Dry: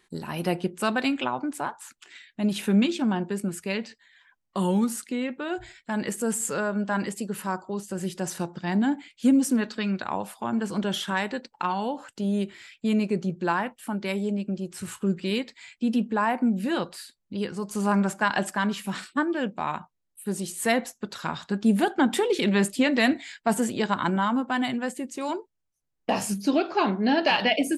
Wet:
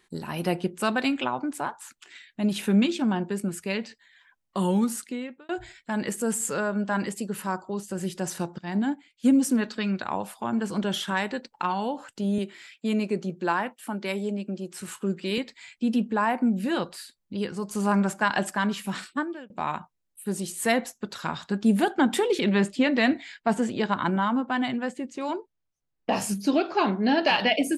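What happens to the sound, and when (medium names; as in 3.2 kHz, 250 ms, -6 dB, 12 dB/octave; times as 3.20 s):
4.99–5.49 s: fade out
8.58–9.29 s: upward expansion, over -37 dBFS
12.38–15.38 s: high-pass 200 Hz
19.06–19.50 s: fade out
22.39–26.13 s: distance through air 87 m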